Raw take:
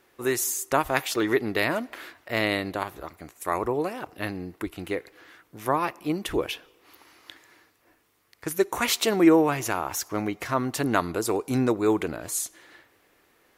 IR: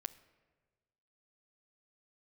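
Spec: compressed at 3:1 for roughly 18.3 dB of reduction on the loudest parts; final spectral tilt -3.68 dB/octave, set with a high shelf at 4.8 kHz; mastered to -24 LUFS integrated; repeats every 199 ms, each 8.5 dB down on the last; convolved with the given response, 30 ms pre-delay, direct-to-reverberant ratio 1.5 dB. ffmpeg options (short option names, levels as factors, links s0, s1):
-filter_complex "[0:a]highshelf=f=4800:g=5,acompressor=threshold=0.0126:ratio=3,aecho=1:1:199|398|597|796:0.376|0.143|0.0543|0.0206,asplit=2[s0][s1];[1:a]atrim=start_sample=2205,adelay=30[s2];[s1][s2]afir=irnorm=-1:irlink=0,volume=1.19[s3];[s0][s3]amix=inputs=2:normalize=0,volume=3.76"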